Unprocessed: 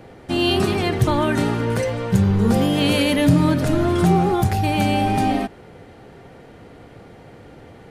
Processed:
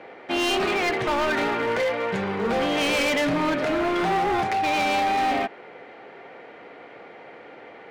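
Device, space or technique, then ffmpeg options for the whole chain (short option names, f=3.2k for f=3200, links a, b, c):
megaphone: -af "highpass=460,lowpass=2.9k,equalizer=f=2.2k:t=o:w=0.42:g=6,asoftclip=type=hard:threshold=-23.5dB,volume=3.5dB"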